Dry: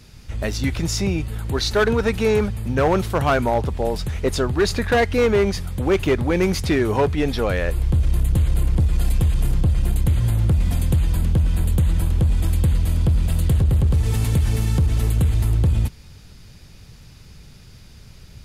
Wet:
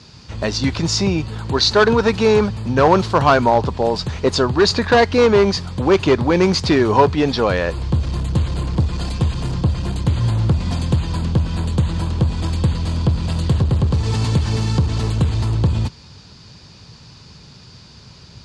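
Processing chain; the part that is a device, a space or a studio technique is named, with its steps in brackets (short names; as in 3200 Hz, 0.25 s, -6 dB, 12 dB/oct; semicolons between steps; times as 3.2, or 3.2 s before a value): car door speaker (speaker cabinet 96–7100 Hz, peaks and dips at 1000 Hz +7 dB, 2100 Hz -4 dB, 4500 Hz +7 dB); gain +4.5 dB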